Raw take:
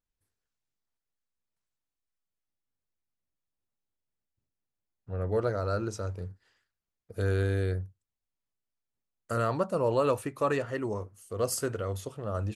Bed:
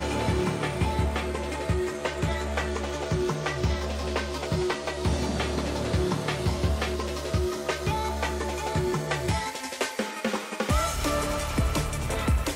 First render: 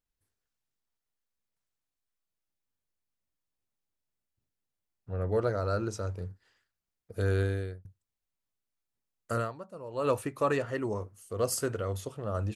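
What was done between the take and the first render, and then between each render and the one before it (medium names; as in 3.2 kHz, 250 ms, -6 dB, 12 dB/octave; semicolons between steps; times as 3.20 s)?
7.40–7.85 s: fade out; 9.35–10.11 s: dip -15.5 dB, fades 0.18 s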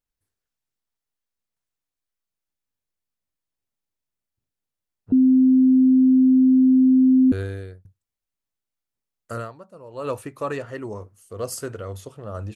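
5.12–7.32 s: bleep 259 Hz -11.5 dBFS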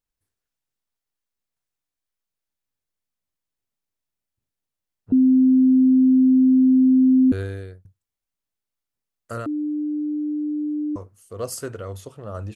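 9.46–10.96 s: bleep 299 Hz -22 dBFS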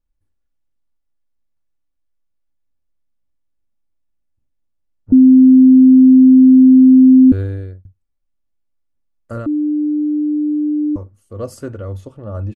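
tilt EQ -3 dB/octave; comb 3.5 ms, depth 40%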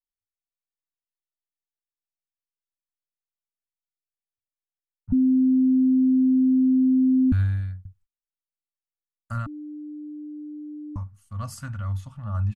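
Chebyshev band-stop 170–970 Hz, order 2; gate -58 dBFS, range -31 dB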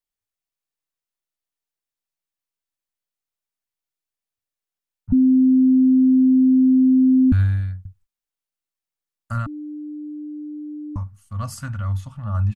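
trim +4.5 dB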